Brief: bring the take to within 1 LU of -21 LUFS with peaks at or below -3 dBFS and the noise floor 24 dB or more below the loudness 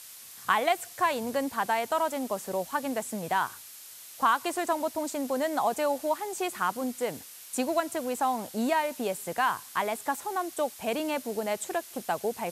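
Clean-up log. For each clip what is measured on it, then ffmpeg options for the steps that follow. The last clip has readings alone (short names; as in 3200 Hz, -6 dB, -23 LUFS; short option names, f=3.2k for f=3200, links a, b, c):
noise floor -47 dBFS; noise floor target -54 dBFS; loudness -30.0 LUFS; peak -10.5 dBFS; loudness target -21.0 LUFS
-> -af "afftdn=nr=7:nf=-47"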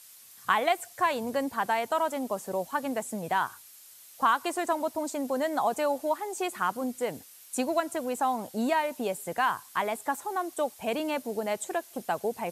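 noise floor -52 dBFS; noise floor target -54 dBFS
-> -af "afftdn=nr=6:nf=-52"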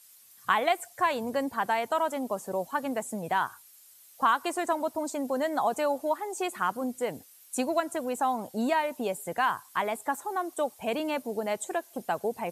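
noise floor -56 dBFS; loudness -30.0 LUFS; peak -10.5 dBFS; loudness target -21.0 LUFS
-> -af "volume=9dB,alimiter=limit=-3dB:level=0:latency=1"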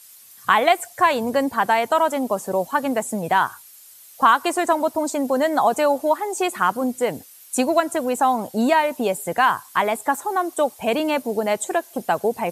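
loudness -21.0 LUFS; peak -3.0 dBFS; noise floor -47 dBFS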